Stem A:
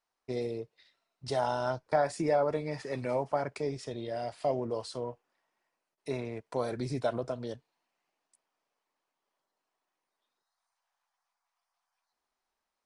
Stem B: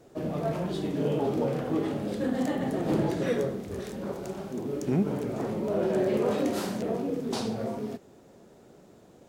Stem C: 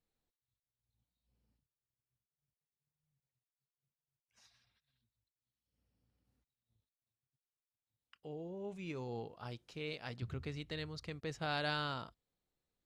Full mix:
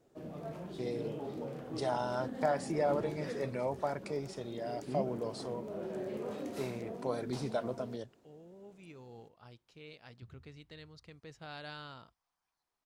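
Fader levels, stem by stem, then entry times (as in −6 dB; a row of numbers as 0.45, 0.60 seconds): −4.0, −13.5, −9.0 decibels; 0.50, 0.00, 0.00 seconds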